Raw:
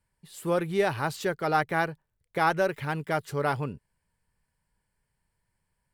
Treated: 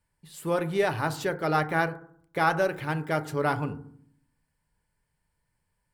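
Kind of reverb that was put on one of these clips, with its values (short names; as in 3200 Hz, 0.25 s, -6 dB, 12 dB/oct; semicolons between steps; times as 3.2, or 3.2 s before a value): FDN reverb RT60 0.59 s, low-frequency decay 1.5×, high-frequency decay 0.3×, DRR 9 dB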